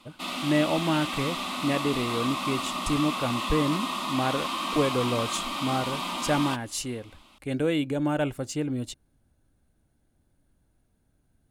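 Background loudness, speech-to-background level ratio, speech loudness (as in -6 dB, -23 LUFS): -30.5 LUFS, 1.5 dB, -29.0 LUFS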